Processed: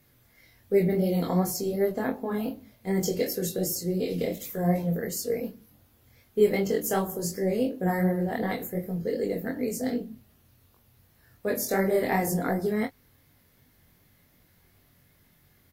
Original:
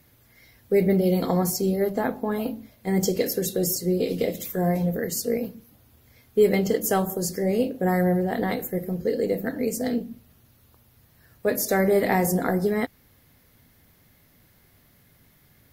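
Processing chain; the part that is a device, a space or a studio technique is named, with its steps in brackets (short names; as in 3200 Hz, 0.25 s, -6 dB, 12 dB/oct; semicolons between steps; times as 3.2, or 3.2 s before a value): double-tracked vocal (doubler 23 ms -11 dB; chorus 2.7 Hz, delay 20 ms, depth 4.2 ms); gain -1 dB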